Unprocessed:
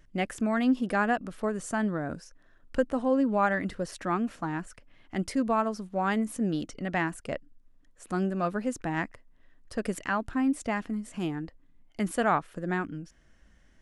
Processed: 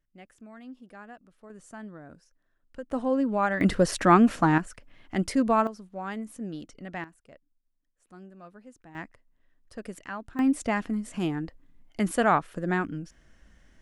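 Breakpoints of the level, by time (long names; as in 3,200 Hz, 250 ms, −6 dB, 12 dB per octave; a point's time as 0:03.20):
−20 dB
from 0:01.50 −13.5 dB
from 0:02.91 −0.5 dB
from 0:03.61 +11 dB
from 0:04.58 +3.5 dB
from 0:05.67 −7.5 dB
from 0:07.04 −19 dB
from 0:08.95 −8 dB
from 0:10.39 +3 dB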